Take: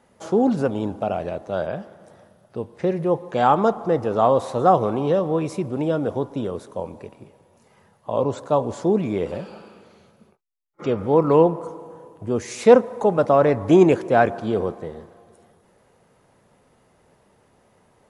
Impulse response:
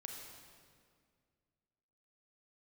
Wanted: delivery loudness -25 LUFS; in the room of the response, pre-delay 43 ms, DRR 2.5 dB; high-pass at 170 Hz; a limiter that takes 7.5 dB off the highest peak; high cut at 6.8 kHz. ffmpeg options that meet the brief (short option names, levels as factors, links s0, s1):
-filter_complex "[0:a]highpass=170,lowpass=6800,alimiter=limit=0.316:level=0:latency=1,asplit=2[s0][s1];[1:a]atrim=start_sample=2205,adelay=43[s2];[s1][s2]afir=irnorm=-1:irlink=0,volume=1.06[s3];[s0][s3]amix=inputs=2:normalize=0,volume=0.668"